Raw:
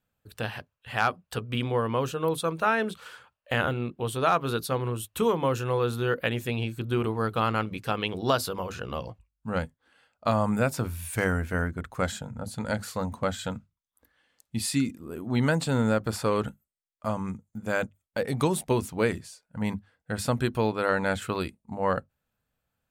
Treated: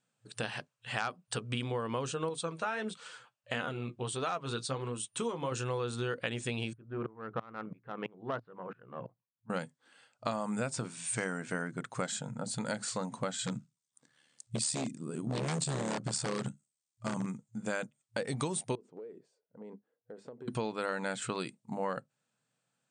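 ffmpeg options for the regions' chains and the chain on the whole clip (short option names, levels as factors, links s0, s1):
-filter_complex "[0:a]asettb=1/sr,asplit=3[s0][s1][s2];[s0]atrim=end=2.294[s3];[s1]atrim=start=2.29:end=5.52,asetpts=PTS-STARTPTS,afade=t=in:d=0.004:c=qsin,afade=t=out:st=3.226:d=0.004:c=qsin,lowpass=10000,flanger=delay=3.9:depth=4.5:regen=50:speed=1.5:shape=sinusoidal[s4];[s2]atrim=start=5.516[s5];[s3][s4]acrossfade=d=0.004:c1=hsin:c2=qsin[s6];[s6][s5]acrossfade=d=0.004:c1=qsin:c2=hsin,asettb=1/sr,asplit=3[s7][s8][s9];[s7]atrim=end=6.734[s10];[s8]atrim=start=6.73:end=9.5,asetpts=PTS-STARTPTS,afade=t=in:d=0.004:c=qsin,afade=t=out:st=2.766:d=0.004:c=qsin,lowpass=f=1800:w=0.5412,lowpass=f=1800:w=1.3066,aeval=exprs='(tanh(6.31*val(0)+0.45)-tanh(0.45))/6.31':c=same,aeval=exprs='val(0)*pow(10,-26*if(lt(mod(-3*n/s,1),2*abs(-3)/1000),1-mod(-3*n/s,1)/(2*abs(-3)/1000),(mod(-3*n/s,1)-2*abs(-3)/1000)/(1-2*abs(-3)/1000))/20)':c=same[s11];[s9]atrim=start=9.496[s12];[s10][s11]acrossfade=d=0.004:c1=hsin:c2=qsin[s13];[s13][s12]acrossfade=d=0.004:c1=qsin:c2=hsin,asettb=1/sr,asplit=3[s14][s15][s16];[s14]atrim=end=13.464[s17];[s15]atrim=start=13.46:end=17.26,asetpts=PTS-STARTPTS,afade=t=in:d=0.004:c=qsin,afade=t=out:st=3.796:d=0.004:c=qsin,tremolo=f=74:d=0.667,bass=f=250:g=10,treble=f=4000:g=7,aeval=exprs='0.0944*(abs(mod(val(0)/0.0944+3,4)-2)-1)':c=same[s18];[s16]atrim=start=17.256[s19];[s17][s18]acrossfade=d=0.004:c1=hsin:c2=qsin[s20];[s20][s19]acrossfade=d=0.004:c1=qsin:c2=hsin,asettb=1/sr,asplit=3[s21][s22][s23];[s21]atrim=end=18.754[s24];[s22]atrim=start=18.75:end=20.48,asetpts=PTS-STARTPTS,afade=t=in:d=0.004:c=qsin,afade=t=out:st=1.726:d=0.004:c=qsin,bandpass=f=430:t=q:w=4.1,acompressor=threshold=0.00891:ratio=12:attack=3.2:release=140:knee=1:detection=peak[s25];[s23]atrim=start=20.476[s26];[s24][s25]acrossfade=d=0.004:c1=hsin:c2=qsin[s27];[s27][s26]acrossfade=d=0.004:c1=qsin:c2=hsin,afftfilt=real='re*between(b*sr/4096,110,9200)':imag='im*between(b*sr/4096,110,9200)':win_size=4096:overlap=0.75,aemphasis=mode=production:type=50kf,acompressor=threshold=0.0282:ratio=4,volume=0.891"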